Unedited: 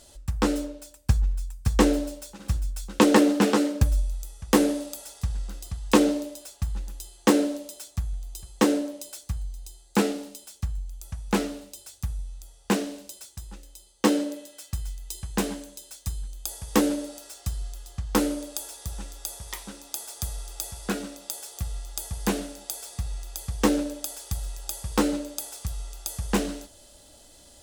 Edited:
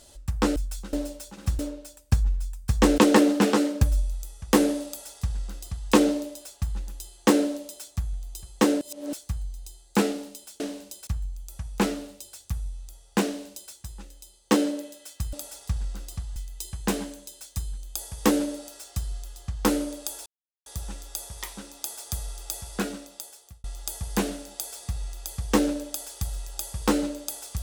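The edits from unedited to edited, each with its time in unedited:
0:00.56–0:01.95: swap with 0:02.61–0:02.98
0:04.87–0:05.90: duplicate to 0:14.86
0:08.81–0:09.13: reverse
0:12.78–0:13.25: duplicate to 0:10.60
0:18.76: splice in silence 0.40 s
0:20.95–0:21.74: fade out linear

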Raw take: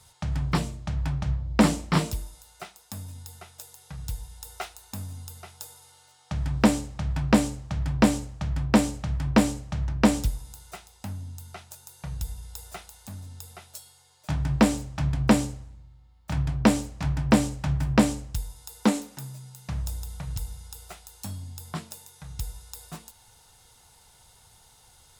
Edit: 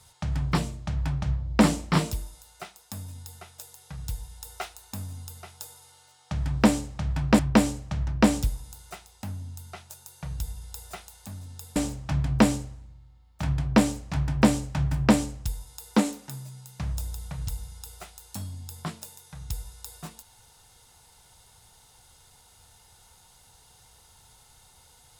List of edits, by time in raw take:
0:07.39–0:09.20: remove
0:13.57–0:14.65: remove

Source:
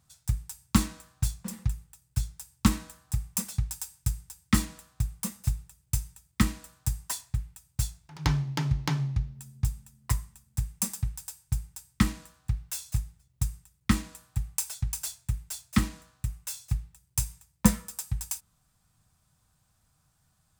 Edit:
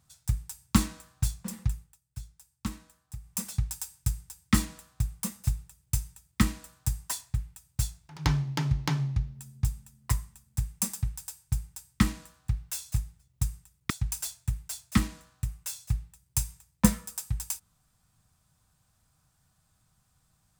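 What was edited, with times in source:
0:01.74–0:03.48: duck −12 dB, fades 0.26 s
0:13.90–0:14.71: remove

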